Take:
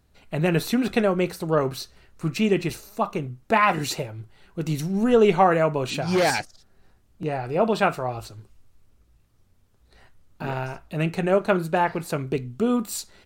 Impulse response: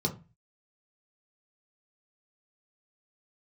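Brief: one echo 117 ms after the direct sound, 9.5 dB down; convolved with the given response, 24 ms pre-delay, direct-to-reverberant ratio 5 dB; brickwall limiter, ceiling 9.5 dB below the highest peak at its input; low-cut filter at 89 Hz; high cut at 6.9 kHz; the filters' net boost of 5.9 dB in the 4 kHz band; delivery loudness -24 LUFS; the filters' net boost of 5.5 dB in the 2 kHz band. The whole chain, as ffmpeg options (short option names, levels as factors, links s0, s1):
-filter_complex "[0:a]highpass=89,lowpass=6900,equalizer=f=2000:t=o:g=5.5,equalizer=f=4000:t=o:g=6,alimiter=limit=0.266:level=0:latency=1,aecho=1:1:117:0.335,asplit=2[s0][s1];[1:a]atrim=start_sample=2205,adelay=24[s2];[s1][s2]afir=irnorm=-1:irlink=0,volume=0.282[s3];[s0][s3]amix=inputs=2:normalize=0,volume=0.631"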